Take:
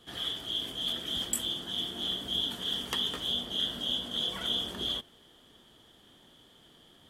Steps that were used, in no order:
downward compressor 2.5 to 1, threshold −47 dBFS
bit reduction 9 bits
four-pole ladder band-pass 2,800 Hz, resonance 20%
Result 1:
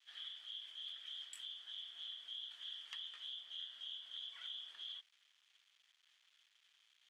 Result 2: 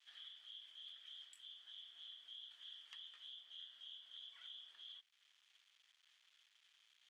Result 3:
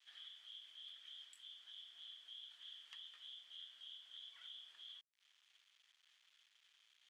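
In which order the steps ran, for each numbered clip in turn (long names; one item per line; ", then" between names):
bit reduction, then four-pole ladder band-pass, then downward compressor
bit reduction, then downward compressor, then four-pole ladder band-pass
downward compressor, then bit reduction, then four-pole ladder band-pass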